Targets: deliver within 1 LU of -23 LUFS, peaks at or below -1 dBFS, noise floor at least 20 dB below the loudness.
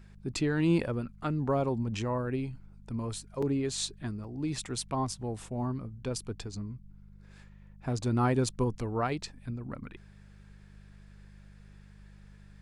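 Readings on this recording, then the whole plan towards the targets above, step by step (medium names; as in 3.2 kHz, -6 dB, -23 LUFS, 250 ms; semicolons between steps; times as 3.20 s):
dropouts 2; longest dropout 4.8 ms; hum 50 Hz; highest harmonic 200 Hz; hum level -50 dBFS; loudness -33.0 LUFS; peak level -15.5 dBFS; loudness target -23.0 LUFS
-> interpolate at 3.42/4.24 s, 4.8 ms; de-hum 50 Hz, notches 4; trim +10 dB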